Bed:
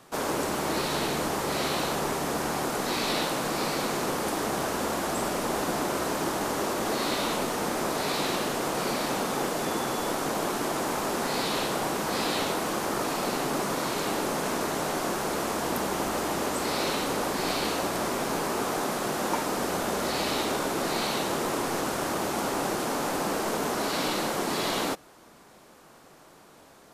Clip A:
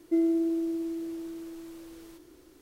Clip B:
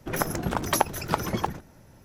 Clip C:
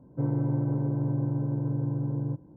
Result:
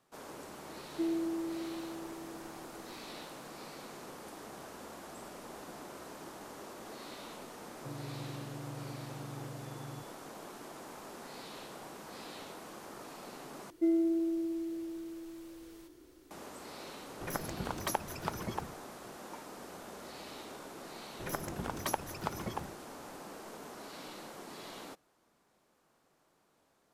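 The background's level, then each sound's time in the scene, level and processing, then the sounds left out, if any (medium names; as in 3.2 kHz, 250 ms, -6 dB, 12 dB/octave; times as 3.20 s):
bed -19 dB
0.87 s: add A -8.5 dB
7.67 s: add C -17 dB
13.70 s: replace with A -3.5 dB
17.14 s: add B -11 dB
21.13 s: add B -11.5 dB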